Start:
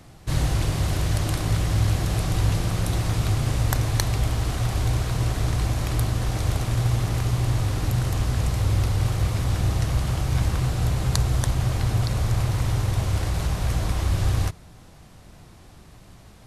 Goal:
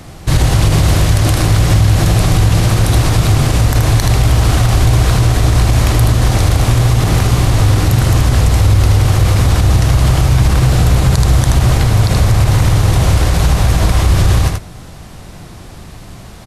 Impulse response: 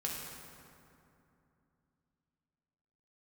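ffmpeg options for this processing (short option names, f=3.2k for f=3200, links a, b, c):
-af "aecho=1:1:78:0.447,alimiter=level_in=15dB:limit=-1dB:release=50:level=0:latency=1,volume=-1dB"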